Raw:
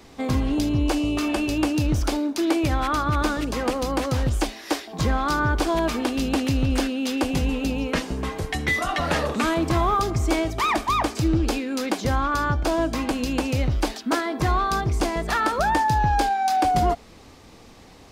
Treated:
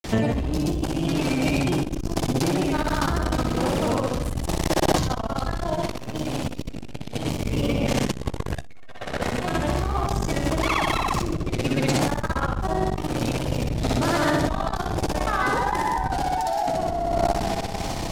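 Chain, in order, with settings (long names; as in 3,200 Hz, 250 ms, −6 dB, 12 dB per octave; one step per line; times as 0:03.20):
sub-octave generator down 1 octave, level +1 dB
high-shelf EQ 6,400 Hz +5.5 dB
notch filter 1,200 Hz, Q 13
granular cloud 100 ms, grains 20 per second, pitch spread up and down by 3 semitones
flutter between parallel walls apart 10.5 metres, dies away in 1.1 s
brickwall limiter −15 dBFS, peak gain reduction 9.5 dB
on a send at −16 dB: convolution reverb RT60 5.8 s, pre-delay 45 ms
on the sum: dynamic equaliser 660 Hz, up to +4 dB, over −35 dBFS, Q 1.7
compressor whose output falls as the input rises −30 dBFS, ratio −1
saturating transformer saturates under 420 Hz
level +9 dB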